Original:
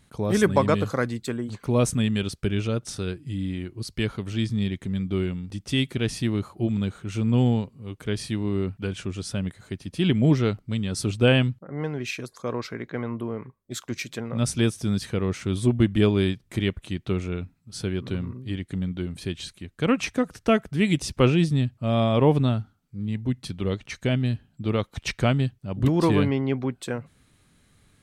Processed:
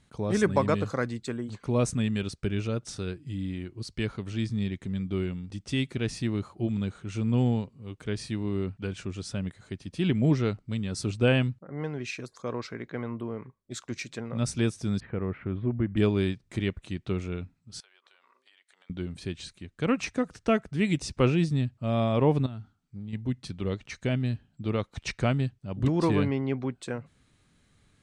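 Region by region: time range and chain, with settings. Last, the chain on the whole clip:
15.00–15.97 s: inverse Chebyshev low-pass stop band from 6.7 kHz, stop band 60 dB + compression 1.5:1, threshold -24 dBFS
17.80–18.90 s: high-pass 740 Hz 24 dB/octave + compression 8:1, threshold -53 dBFS
22.46–23.13 s: peaking EQ 530 Hz -9 dB 0.31 oct + compression 10:1, threshold -30 dBFS
whole clip: low-pass 9 kHz 24 dB/octave; dynamic bell 3.2 kHz, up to -6 dB, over -51 dBFS, Q 7.6; trim -4 dB

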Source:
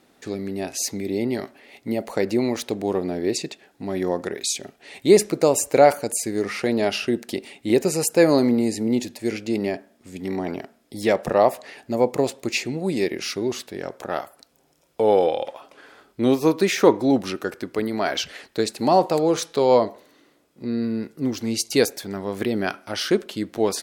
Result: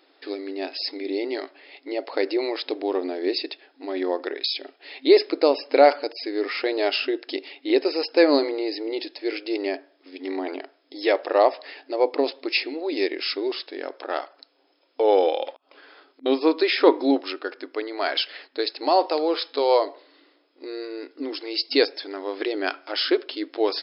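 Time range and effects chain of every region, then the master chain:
15.51–16.26 s: inverted gate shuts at -25 dBFS, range -31 dB + compression 4:1, threshold -45 dBFS
17.21–19.87 s: high-pass 370 Hz 6 dB/octave + tape noise reduction on one side only decoder only
whole clip: FFT band-pass 260–5300 Hz; treble shelf 4.1 kHz +9.5 dB; trim -1 dB

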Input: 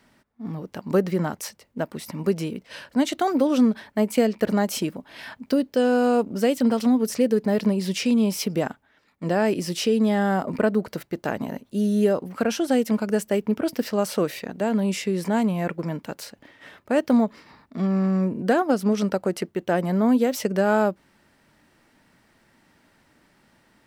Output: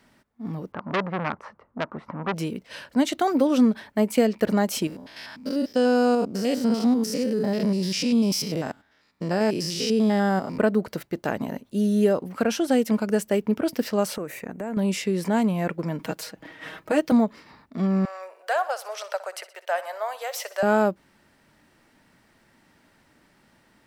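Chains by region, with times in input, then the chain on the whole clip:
0.72–2.34 s: resonant low-pass 1.2 kHz, resonance Q 3.4 + transformer saturation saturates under 2.2 kHz
4.87–10.58 s: spectrogram pixelated in time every 100 ms + peaking EQ 5.1 kHz +9 dB 0.53 oct
14.16–14.77 s: high-order bell 4 kHz -12.5 dB 1.1 oct + compression 5:1, threshold -28 dBFS
15.99–17.12 s: comb 6.3 ms, depth 81% + three bands compressed up and down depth 40%
18.05–20.63 s: elliptic high-pass 600 Hz, stop band 60 dB + feedback delay 61 ms, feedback 56%, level -16 dB
whole clip: none

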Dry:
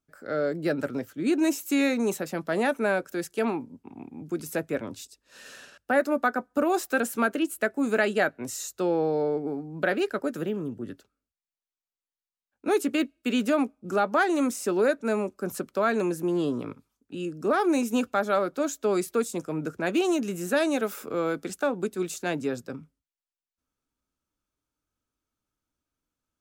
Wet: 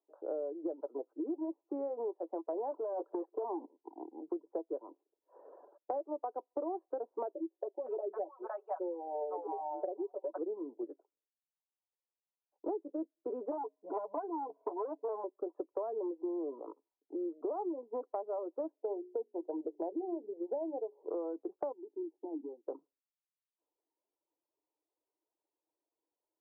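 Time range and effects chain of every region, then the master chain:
2.71–3.73 s: low-pass 5.9 kHz + level held to a coarse grid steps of 22 dB + overdrive pedal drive 37 dB, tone 1.5 kHz, clips at -17.5 dBFS
7.33–10.38 s: high-pass 530 Hz + comb 5.4 ms, depth 84% + bands offset in time lows, highs 510 ms, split 740 Hz
13.51–15.24 s: rippled EQ curve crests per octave 1.7, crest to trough 17 dB + transformer saturation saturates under 3.2 kHz
18.72–21.10 s: steep low-pass 940 Hz 72 dB/octave + hum notches 60/120/180/240/300/360/420 Hz
21.72–22.68 s: compression 5:1, threshold -30 dBFS + waveshaping leveller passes 1 + cascade formant filter u
whole clip: reverb removal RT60 0.78 s; Chebyshev band-pass 320–1000 Hz, order 4; compression 10:1, threshold -38 dBFS; trim +3.5 dB

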